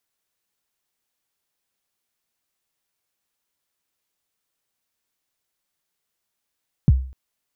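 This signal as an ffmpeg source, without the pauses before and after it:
-f lavfi -i "aevalsrc='0.447*pow(10,-3*t/0.45)*sin(2*PI*(190*0.032/log(65/190)*(exp(log(65/190)*min(t,0.032)/0.032)-1)+65*max(t-0.032,0)))':d=0.25:s=44100"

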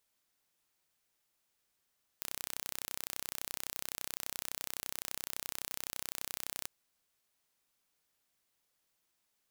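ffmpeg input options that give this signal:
-f lavfi -i "aevalsrc='0.282*eq(mod(n,1387),0)':d=4.46:s=44100"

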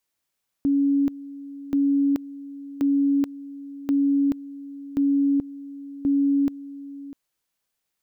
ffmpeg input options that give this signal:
-f lavfi -i "aevalsrc='pow(10,(-17-17.5*gte(mod(t,1.08),0.43))/20)*sin(2*PI*280*t)':d=6.48:s=44100"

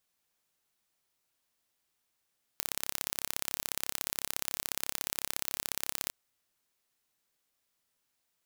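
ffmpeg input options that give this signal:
-f lavfi -i "aevalsrc='0.631*eq(mod(n,1297),0)*(0.5+0.5*eq(mod(n,2594),0))':d=3.52:s=44100"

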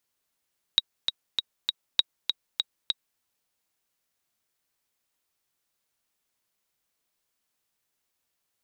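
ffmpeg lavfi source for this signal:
-f lavfi -i "aevalsrc='pow(10,(-5.5-6*gte(mod(t,4*60/198),60/198))/20)*sin(2*PI*3810*mod(t,60/198))*exp(-6.91*mod(t,60/198)/0.03)':d=2.42:s=44100"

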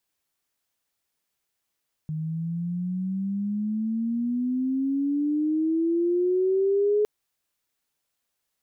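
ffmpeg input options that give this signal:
-f lavfi -i "aevalsrc='pow(10,(-18.5+8.5*(t/4.96-1))/20)*sin(2*PI*154*4.96/(17.5*log(2)/12)*(exp(17.5*log(2)/12*t/4.96)-1))':d=4.96:s=44100"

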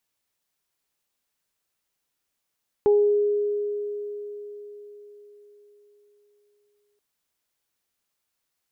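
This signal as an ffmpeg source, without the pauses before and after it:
-f lavfi -i "aevalsrc='0.2*pow(10,-3*t/4.49)*sin(2*PI*413*t)+0.0422*pow(10,-3*t/0.45)*sin(2*PI*826*t)':d=4.13:s=44100"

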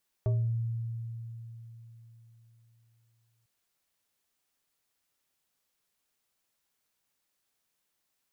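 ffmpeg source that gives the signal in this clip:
-f lavfi -i "aevalsrc='0.0708*pow(10,-3*t/3.91)*sin(2*PI*115*t+0.52*pow(10,-3*t/0.46)*sin(2*PI*4.44*115*t))':d=3.2:s=44100"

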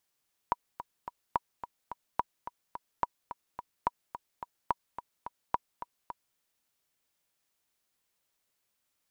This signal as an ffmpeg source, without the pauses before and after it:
-f lavfi -i "aevalsrc='pow(10,(-13-12*gte(mod(t,3*60/215),60/215))/20)*sin(2*PI*966*mod(t,60/215))*exp(-6.91*mod(t,60/215)/0.03)':d=5.86:s=44100"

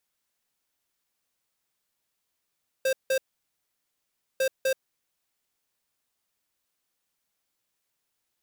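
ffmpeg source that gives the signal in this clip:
-f lavfi -i "aevalsrc='0.0631*(2*lt(mod(529*t,1),0.5)-1)*clip(min(mod(mod(t,1.55),0.25),0.08-mod(mod(t,1.55),0.25))/0.005,0,1)*lt(mod(t,1.55),0.5)':d=3.1:s=44100"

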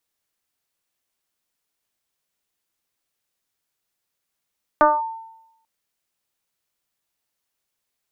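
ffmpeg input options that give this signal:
-f lavfi -i "aevalsrc='0.376*pow(10,-3*t/0.87)*sin(2*PI*899*t+1.6*clip(1-t/0.21,0,1)*sin(2*PI*0.33*899*t))':d=0.84:s=44100"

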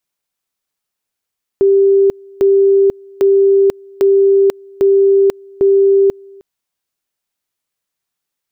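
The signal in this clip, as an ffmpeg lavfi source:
-f lavfi -i "aevalsrc='pow(10,(-6.5-28*gte(mod(t,0.8),0.49))/20)*sin(2*PI*393*t)':d=4.8:s=44100"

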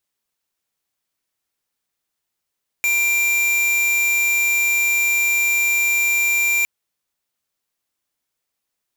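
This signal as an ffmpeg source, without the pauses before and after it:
-f lavfi -i "aevalsrc='0.126*(2*lt(mod(2370*t,1),0.5)-1)':d=3.81:s=44100"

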